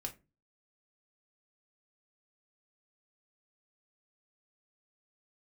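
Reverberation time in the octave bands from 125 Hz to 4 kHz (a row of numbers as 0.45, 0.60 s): 0.50, 0.45, 0.30, 0.20, 0.20, 0.15 s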